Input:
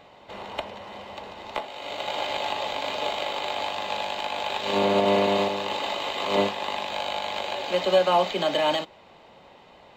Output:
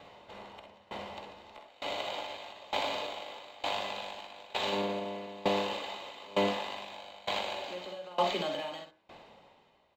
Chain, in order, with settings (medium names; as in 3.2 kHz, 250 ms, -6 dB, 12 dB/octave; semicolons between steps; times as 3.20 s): de-hum 63.17 Hz, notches 37; peak limiter -19 dBFS, peak gain reduction 9 dB; on a send: early reflections 50 ms -7.5 dB, 64 ms -7 dB; on the sum: sawtooth tremolo in dB decaying 1.1 Hz, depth 23 dB